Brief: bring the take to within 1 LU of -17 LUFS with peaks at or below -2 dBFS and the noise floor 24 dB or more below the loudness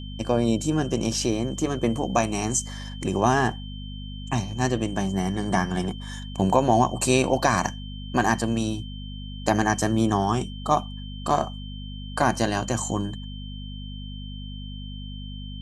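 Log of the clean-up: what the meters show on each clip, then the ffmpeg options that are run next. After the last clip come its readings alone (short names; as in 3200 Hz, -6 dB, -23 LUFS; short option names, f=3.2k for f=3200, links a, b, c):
hum 50 Hz; harmonics up to 250 Hz; hum level -33 dBFS; steady tone 3100 Hz; tone level -43 dBFS; loudness -24.5 LUFS; peak -5.0 dBFS; loudness target -17.0 LUFS
-> -af "bandreject=f=50:t=h:w=4,bandreject=f=100:t=h:w=4,bandreject=f=150:t=h:w=4,bandreject=f=200:t=h:w=4,bandreject=f=250:t=h:w=4"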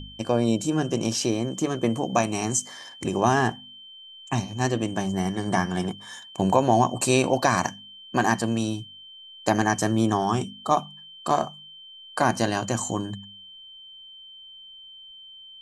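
hum none; steady tone 3100 Hz; tone level -43 dBFS
-> -af "bandreject=f=3.1k:w=30"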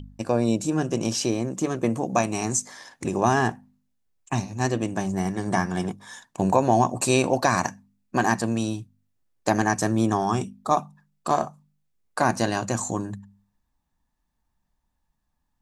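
steady tone none; loudness -25.0 LUFS; peak -5.5 dBFS; loudness target -17.0 LUFS
-> -af "volume=8dB,alimiter=limit=-2dB:level=0:latency=1"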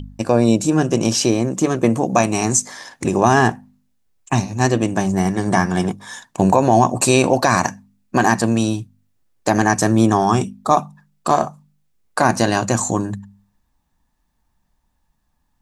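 loudness -17.5 LUFS; peak -2.0 dBFS; noise floor -68 dBFS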